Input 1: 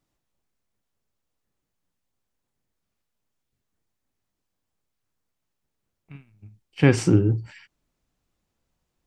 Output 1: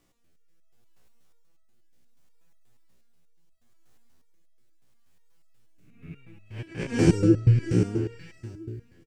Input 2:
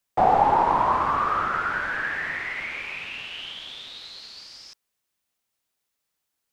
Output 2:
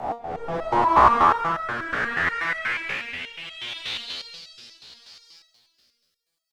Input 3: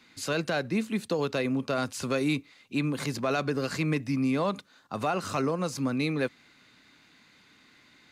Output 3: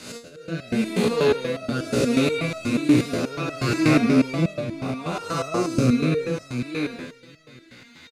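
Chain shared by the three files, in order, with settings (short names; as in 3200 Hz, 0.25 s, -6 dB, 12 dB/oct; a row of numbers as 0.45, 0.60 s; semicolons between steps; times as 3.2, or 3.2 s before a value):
time blur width 0.293 s; auto swell 0.54 s; on a send: feedback echo 0.657 s, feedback 17%, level -8 dB; on the sum: rotary speaker horn 0.7 Hz; stepped resonator 8.3 Hz 60–650 Hz; match loudness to -23 LUFS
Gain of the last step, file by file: +24.0, +18.0, +24.5 dB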